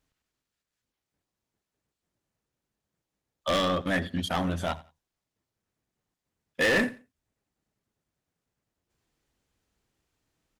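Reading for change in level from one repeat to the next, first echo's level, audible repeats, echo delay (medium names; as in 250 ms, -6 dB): -12.5 dB, -20.0 dB, 2, 87 ms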